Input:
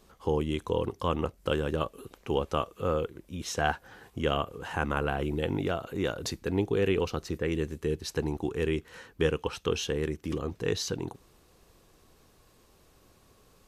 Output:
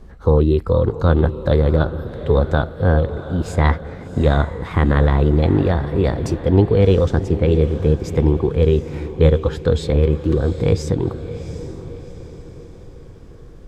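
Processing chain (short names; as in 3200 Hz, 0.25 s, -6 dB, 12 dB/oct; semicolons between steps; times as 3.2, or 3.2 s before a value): RIAA curve playback; formant shift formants +4 st; diffused feedback echo 0.738 s, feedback 46%, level -12 dB; gain +6.5 dB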